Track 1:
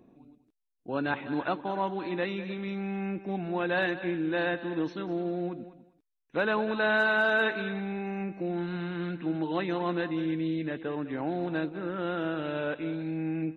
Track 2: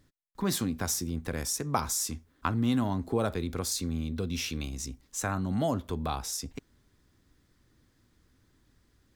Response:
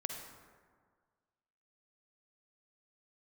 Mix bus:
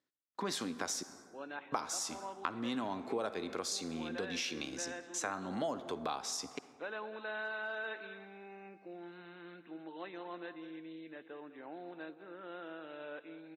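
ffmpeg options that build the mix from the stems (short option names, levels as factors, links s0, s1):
-filter_complex "[0:a]adelay=450,volume=0.2,asplit=2[s0][s1];[s1]volume=0.15[s2];[1:a]agate=range=0.112:threshold=0.002:ratio=16:detection=peak,volume=1.12,asplit=3[s3][s4][s5];[s3]atrim=end=1.03,asetpts=PTS-STARTPTS,afade=t=out:st=1.026:d=0.004:c=hsin[s6];[s4]atrim=start=1.03:end=1.72,asetpts=PTS-STARTPTS,volume=0[s7];[s5]atrim=start=1.72,asetpts=PTS-STARTPTS,afade=t=in:d=0.004:c=hsin[s8];[s6][s7][s8]concat=n=3:v=0:a=1,asplit=2[s9][s10];[s10]volume=0.376[s11];[2:a]atrim=start_sample=2205[s12];[s2][s11]amix=inputs=2:normalize=0[s13];[s13][s12]afir=irnorm=-1:irlink=0[s14];[s0][s9][s14]amix=inputs=3:normalize=0,highpass=360,lowpass=6300,acompressor=threshold=0.0141:ratio=2.5"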